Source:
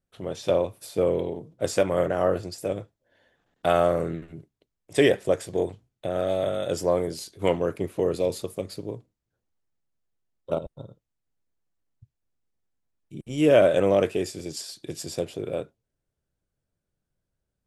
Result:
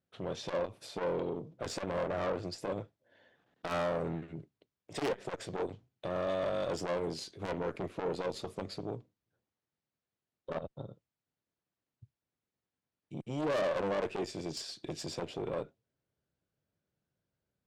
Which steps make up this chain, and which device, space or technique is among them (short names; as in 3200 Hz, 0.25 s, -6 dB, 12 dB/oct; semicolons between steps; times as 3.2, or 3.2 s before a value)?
valve radio (BPF 100–5000 Hz; tube stage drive 27 dB, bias 0.3; core saturation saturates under 410 Hz)